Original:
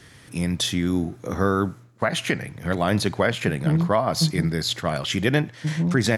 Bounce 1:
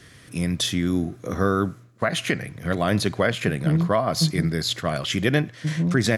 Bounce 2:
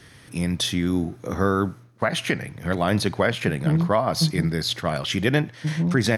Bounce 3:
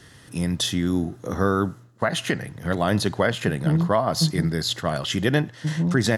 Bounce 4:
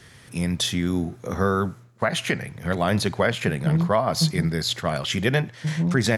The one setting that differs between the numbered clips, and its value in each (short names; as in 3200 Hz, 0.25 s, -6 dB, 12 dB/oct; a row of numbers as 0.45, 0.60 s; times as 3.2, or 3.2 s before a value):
notch, frequency: 870, 7300, 2300, 300 Hz